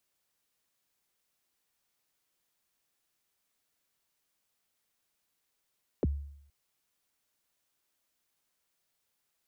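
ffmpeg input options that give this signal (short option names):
-f lavfi -i "aevalsrc='0.075*pow(10,-3*t/0.71)*sin(2*PI*(560*0.028/log(71/560)*(exp(log(71/560)*min(t,0.028)/0.028)-1)+71*max(t-0.028,0)))':d=0.47:s=44100"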